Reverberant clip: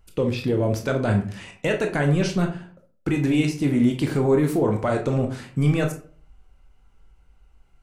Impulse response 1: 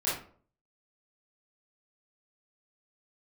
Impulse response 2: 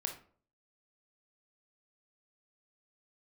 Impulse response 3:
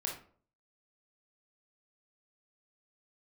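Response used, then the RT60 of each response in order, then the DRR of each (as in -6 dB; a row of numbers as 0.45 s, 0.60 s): 2; 0.50 s, 0.50 s, 0.50 s; -10.5 dB, 3.0 dB, -1.5 dB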